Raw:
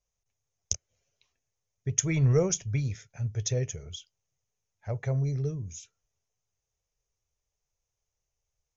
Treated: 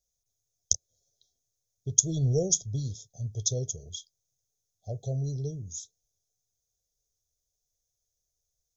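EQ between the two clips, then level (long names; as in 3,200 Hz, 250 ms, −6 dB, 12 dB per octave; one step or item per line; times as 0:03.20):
linear-phase brick-wall band-stop 790–3,200 Hz
high-shelf EQ 4,100 Hz +11.5 dB
−3.0 dB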